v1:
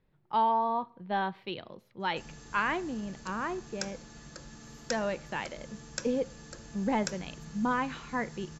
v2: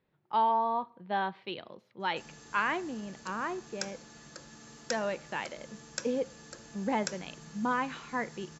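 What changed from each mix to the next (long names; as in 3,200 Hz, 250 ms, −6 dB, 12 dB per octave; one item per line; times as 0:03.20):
speech: add low-pass filter 6,100 Hz 12 dB per octave
master: add high-pass filter 230 Hz 6 dB per octave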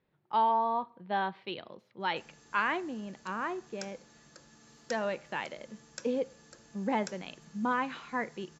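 background −7.0 dB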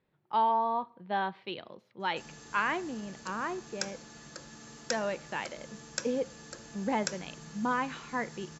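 background +9.0 dB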